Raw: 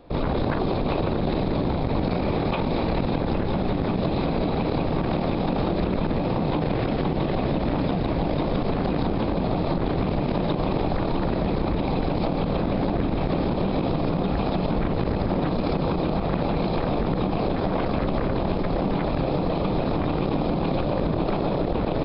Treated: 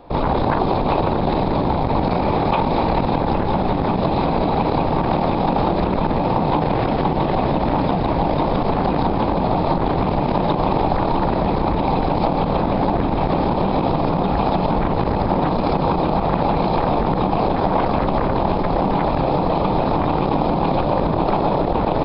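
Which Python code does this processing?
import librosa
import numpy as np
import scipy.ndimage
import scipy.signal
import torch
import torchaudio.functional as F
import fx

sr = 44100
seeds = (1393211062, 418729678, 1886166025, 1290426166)

y = fx.peak_eq(x, sr, hz=890.0, db=9.5, octaves=0.73)
y = y * 10.0 ** (3.5 / 20.0)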